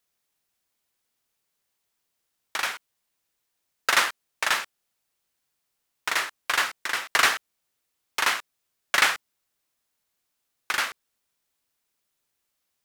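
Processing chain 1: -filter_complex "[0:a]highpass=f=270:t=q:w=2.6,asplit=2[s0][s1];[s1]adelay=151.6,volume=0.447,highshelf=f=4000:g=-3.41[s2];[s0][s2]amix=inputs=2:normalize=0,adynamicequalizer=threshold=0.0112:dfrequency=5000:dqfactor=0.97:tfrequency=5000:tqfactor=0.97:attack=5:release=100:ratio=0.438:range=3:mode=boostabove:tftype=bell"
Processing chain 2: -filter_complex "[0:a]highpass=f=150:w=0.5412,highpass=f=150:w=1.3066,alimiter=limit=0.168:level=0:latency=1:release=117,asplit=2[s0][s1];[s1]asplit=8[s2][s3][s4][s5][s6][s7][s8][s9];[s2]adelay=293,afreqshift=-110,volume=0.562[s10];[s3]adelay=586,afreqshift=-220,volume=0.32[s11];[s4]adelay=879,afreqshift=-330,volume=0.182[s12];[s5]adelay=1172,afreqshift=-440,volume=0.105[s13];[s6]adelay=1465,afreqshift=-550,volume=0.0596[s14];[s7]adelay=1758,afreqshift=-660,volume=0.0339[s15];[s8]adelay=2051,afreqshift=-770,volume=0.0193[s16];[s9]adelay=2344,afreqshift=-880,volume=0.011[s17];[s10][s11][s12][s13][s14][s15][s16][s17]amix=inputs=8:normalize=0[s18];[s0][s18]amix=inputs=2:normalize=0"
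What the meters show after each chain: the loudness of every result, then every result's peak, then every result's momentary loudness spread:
-23.0 LUFS, -31.0 LUFS; -2.0 dBFS, -13.5 dBFS; 15 LU, 18 LU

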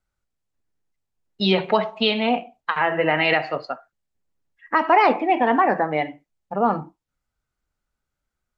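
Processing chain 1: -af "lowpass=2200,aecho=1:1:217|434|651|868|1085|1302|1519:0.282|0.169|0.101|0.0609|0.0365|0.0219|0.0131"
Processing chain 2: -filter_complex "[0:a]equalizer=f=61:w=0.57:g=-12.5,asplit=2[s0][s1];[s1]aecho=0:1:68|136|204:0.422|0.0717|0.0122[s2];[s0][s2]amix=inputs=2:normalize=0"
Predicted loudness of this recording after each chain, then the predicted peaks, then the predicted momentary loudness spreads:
-21.5 LUFS, -20.5 LUFS; -5.5 dBFS, -3.5 dBFS; 18 LU, 12 LU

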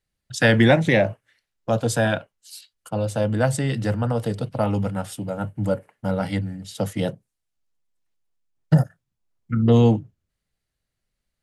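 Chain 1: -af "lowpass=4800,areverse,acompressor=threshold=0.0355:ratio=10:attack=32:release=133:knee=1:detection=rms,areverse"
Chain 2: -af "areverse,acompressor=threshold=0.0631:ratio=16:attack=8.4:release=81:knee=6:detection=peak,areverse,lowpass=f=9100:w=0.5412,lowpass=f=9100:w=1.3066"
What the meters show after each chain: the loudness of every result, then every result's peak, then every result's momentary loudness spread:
-33.0 LUFS, -30.0 LUFS; -16.5 dBFS, -14.5 dBFS; 12 LU, 9 LU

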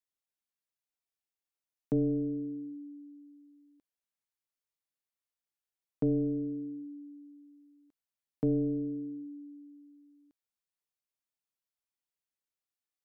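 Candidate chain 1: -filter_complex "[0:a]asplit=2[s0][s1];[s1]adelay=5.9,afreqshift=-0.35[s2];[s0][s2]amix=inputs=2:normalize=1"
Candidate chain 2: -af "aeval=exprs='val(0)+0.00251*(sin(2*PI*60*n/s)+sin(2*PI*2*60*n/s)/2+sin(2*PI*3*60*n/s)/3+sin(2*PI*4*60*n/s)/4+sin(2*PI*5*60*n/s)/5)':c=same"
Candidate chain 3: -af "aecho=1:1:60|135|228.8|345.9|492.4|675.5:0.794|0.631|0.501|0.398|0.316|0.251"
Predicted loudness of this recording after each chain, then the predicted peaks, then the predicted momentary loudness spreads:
-38.5 LUFS, -34.0 LUFS, -29.0 LUFS; -23.0 dBFS, -21.5 dBFS, -17.0 dBFS; 20 LU, 22 LU, 19 LU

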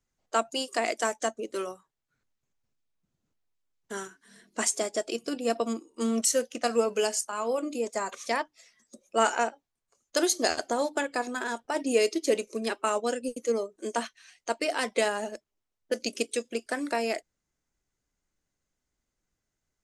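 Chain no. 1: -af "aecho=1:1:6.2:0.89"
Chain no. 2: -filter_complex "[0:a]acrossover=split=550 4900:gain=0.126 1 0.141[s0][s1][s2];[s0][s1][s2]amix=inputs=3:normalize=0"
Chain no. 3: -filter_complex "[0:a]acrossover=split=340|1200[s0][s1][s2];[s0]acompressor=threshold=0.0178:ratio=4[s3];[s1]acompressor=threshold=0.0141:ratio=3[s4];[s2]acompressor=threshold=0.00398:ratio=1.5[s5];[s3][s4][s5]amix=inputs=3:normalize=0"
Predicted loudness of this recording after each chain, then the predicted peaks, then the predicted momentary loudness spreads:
-27.0 LUFS, -34.0 LUFS, -35.5 LUFS; -8.0 dBFS, -12.0 dBFS, -18.5 dBFS; 11 LU, 10 LU, 8 LU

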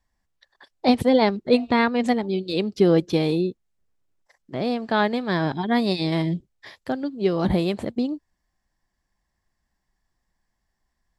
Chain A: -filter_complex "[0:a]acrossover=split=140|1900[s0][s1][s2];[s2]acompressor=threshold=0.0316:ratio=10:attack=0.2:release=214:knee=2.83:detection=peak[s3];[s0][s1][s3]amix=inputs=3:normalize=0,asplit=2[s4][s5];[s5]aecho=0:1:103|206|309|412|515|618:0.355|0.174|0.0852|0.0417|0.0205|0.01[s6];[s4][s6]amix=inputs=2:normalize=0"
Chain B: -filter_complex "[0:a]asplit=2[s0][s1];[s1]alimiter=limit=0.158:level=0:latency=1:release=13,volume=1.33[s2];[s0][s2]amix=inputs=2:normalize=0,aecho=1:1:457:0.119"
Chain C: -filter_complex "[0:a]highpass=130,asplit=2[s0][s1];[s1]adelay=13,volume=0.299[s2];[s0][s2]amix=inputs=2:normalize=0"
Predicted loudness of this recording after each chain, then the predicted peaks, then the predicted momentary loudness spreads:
-22.5 LUFS, -17.0 LUFS, -22.5 LUFS; -4.5 dBFS, -3.0 dBFS, -5.0 dBFS; 12 LU, 10 LU, 11 LU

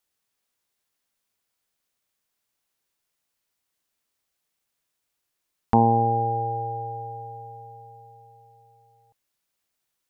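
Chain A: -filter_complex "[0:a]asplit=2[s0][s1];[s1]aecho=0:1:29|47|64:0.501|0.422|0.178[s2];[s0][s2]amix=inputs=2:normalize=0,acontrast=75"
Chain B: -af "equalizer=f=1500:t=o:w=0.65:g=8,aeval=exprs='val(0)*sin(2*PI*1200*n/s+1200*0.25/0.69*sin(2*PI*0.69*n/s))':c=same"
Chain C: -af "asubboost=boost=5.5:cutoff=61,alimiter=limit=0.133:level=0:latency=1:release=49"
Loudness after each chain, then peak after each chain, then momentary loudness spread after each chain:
-19.5 LUFS, -24.5 LUFS, -30.0 LUFS; -3.0 dBFS, -5.0 dBFS, -17.5 dBFS; 21 LU, 21 LU, 19 LU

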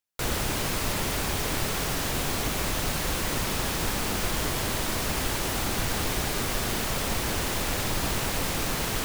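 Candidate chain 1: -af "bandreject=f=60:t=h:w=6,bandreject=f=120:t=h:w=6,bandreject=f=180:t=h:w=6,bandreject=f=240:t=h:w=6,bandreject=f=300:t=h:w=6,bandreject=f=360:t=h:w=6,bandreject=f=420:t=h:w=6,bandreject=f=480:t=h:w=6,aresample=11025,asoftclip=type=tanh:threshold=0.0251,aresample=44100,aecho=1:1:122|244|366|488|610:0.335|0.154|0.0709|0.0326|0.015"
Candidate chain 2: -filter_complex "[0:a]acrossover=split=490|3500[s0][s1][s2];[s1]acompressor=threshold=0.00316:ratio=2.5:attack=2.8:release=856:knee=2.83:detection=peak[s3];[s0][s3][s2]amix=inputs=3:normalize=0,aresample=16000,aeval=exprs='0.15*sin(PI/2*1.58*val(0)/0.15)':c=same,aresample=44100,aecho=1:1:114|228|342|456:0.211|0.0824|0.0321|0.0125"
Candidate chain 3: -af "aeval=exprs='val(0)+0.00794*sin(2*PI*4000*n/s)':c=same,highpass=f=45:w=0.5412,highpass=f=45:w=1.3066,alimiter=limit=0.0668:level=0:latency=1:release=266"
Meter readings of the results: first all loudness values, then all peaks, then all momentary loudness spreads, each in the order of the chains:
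-35.0 LUFS, -25.0 LUFS, -32.5 LUFS; -26.0 dBFS, -14.0 dBFS, -23.5 dBFS; 0 LU, 0 LU, 1 LU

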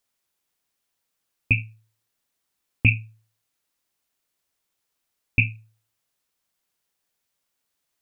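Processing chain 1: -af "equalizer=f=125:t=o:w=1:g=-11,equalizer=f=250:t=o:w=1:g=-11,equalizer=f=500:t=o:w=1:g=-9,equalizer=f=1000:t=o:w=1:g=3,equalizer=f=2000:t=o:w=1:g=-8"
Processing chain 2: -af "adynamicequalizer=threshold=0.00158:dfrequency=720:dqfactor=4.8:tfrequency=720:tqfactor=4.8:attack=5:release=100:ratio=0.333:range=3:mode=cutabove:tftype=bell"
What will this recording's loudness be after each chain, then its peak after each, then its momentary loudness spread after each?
-30.0 LUFS, -23.5 LUFS; -11.0 dBFS, -5.0 dBFS; 6 LU, 6 LU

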